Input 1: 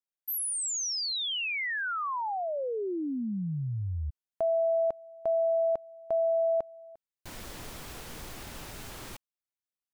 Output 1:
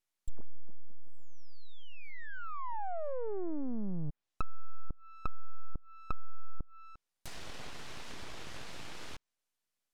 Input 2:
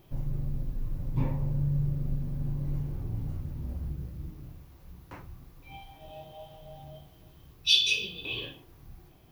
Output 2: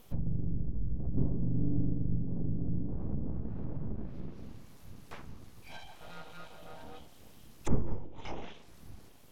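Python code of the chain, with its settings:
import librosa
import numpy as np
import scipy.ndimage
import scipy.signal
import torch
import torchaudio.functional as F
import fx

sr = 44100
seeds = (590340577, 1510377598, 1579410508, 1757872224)

y = fx.high_shelf(x, sr, hz=7700.0, db=9.0)
y = np.abs(y)
y = fx.env_lowpass_down(y, sr, base_hz=340.0, full_db=-27.0)
y = F.gain(torch.from_numpy(y), 1.5).numpy()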